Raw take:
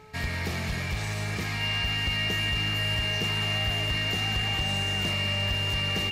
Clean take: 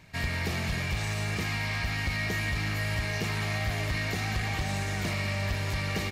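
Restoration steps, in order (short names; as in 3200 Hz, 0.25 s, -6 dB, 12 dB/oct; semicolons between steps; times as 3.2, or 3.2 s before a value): de-hum 431.4 Hz, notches 3; notch 2800 Hz, Q 30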